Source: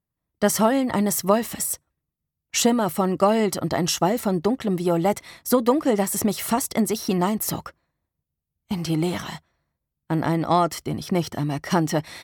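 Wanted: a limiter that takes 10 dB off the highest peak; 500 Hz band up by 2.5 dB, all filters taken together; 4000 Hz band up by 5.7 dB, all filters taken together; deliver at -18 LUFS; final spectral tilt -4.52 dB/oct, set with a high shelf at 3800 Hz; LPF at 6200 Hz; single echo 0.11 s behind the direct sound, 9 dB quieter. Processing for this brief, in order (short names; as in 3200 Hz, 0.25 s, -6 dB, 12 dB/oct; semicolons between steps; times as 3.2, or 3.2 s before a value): LPF 6200 Hz; bell 500 Hz +3 dB; high shelf 3800 Hz +4 dB; bell 4000 Hz +6 dB; limiter -13 dBFS; echo 0.11 s -9 dB; gain +5.5 dB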